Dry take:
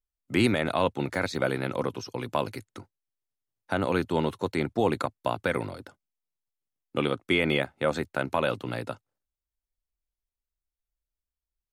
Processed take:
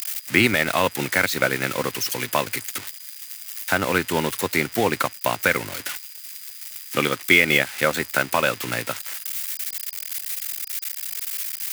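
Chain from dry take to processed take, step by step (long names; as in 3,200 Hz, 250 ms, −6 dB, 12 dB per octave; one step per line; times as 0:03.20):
spike at every zero crossing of −21 dBFS
parametric band 2,000 Hz +10.5 dB 1.4 octaves
transient designer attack +2 dB, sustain −5 dB
steady tone 4,900 Hz −49 dBFS
level +1.5 dB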